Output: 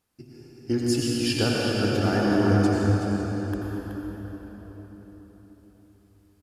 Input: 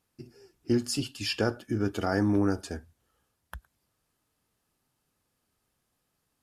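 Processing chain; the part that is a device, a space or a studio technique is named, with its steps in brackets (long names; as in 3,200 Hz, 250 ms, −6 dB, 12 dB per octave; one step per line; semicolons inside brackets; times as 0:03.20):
cave (single-tap delay 375 ms −8.5 dB; convolution reverb RT60 4.6 s, pre-delay 81 ms, DRR −4.5 dB)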